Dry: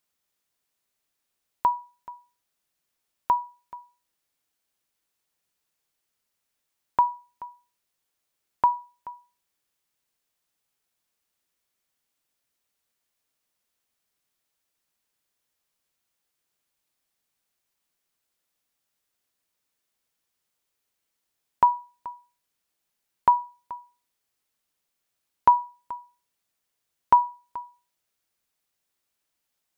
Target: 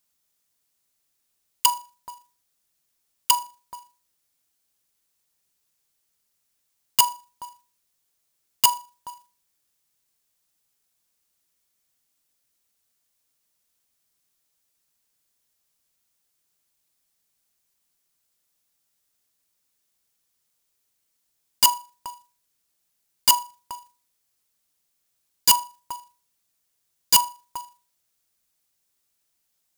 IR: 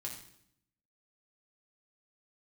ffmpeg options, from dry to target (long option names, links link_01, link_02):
-af "aeval=exprs='(mod(4.73*val(0)+1,2)-1)/4.73':channel_layout=same,acrusher=bits=2:mode=log:mix=0:aa=0.000001,bass=frequency=250:gain=4,treble=frequency=4000:gain=7"